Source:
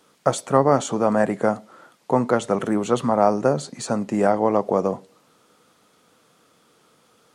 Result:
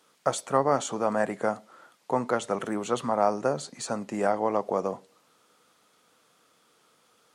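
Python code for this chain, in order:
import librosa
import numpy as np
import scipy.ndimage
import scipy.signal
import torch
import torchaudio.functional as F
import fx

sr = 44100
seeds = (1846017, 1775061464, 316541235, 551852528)

y = fx.low_shelf(x, sr, hz=440.0, db=-8.0)
y = y * 10.0 ** (-3.5 / 20.0)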